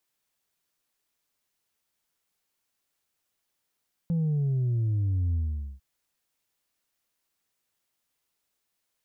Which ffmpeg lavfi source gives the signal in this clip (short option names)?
-f lavfi -i "aevalsrc='0.0668*clip((1.7-t)/0.46,0,1)*tanh(1.26*sin(2*PI*170*1.7/log(65/170)*(exp(log(65/170)*t/1.7)-1)))/tanh(1.26)':d=1.7:s=44100"